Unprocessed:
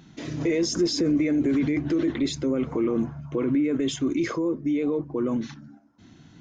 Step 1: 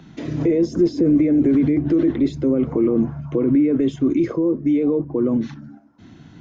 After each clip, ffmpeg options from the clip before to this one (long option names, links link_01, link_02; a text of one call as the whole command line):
ffmpeg -i in.wav -filter_complex "[0:a]highshelf=frequency=4800:gain=-11.5,acrossover=split=130|690[link_01][link_02][link_03];[link_03]acompressor=threshold=-48dB:ratio=6[link_04];[link_01][link_02][link_04]amix=inputs=3:normalize=0,volume=7dB" out.wav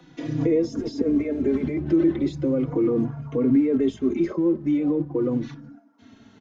ffmpeg -i in.wav -filter_complex "[0:a]acrossover=split=210|550|1200[link_01][link_02][link_03][link_04];[link_01]aeval=exprs='sgn(val(0))*max(abs(val(0))-0.00447,0)':channel_layout=same[link_05];[link_05][link_02][link_03][link_04]amix=inputs=4:normalize=0,asplit=2[link_06][link_07];[link_07]adelay=3.6,afreqshift=-0.39[link_08];[link_06][link_08]amix=inputs=2:normalize=1" out.wav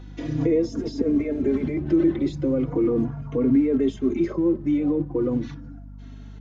ffmpeg -i in.wav -af "aeval=exprs='val(0)+0.0112*(sin(2*PI*50*n/s)+sin(2*PI*2*50*n/s)/2+sin(2*PI*3*50*n/s)/3+sin(2*PI*4*50*n/s)/4+sin(2*PI*5*50*n/s)/5)':channel_layout=same" out.wav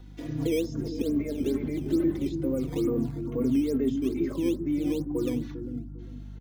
ffmpeg -i in.wav -filter_complex "[0:a]acrossover=split=370|1600[link_01][link_02][link_03];[link_01]aecho=1:1:400|800|1200|1600:0.631|0.17|0.046|0.0124[link_04];[link_02]acrusher=samples=9:mix=1:aa=0.000001:lfo=1:lforange=14.4:lforate=2.3[link_05];[link_04][link_05][link_03]amix=inputs=3:normalize=0,volume=-6dB" out.wav